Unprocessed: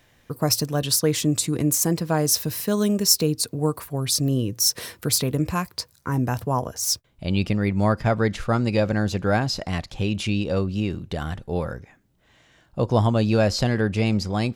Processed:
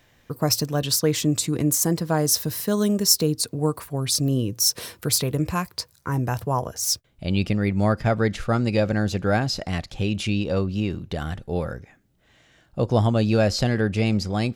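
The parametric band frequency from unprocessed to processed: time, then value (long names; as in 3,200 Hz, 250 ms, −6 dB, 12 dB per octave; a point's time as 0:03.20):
parametric band −5.5 dB 0.27 octaves
10,000 Hz
from 0:01.66 2,500 Hz
from 0:03.41 13,000 Hz
from 0:04.15 1,900 Hz
from 0:04.99 250 Hz
from 0:06.72 1,000 Hz
from 0:10.34 8,400 Hz
from 0:11.17 990 Hz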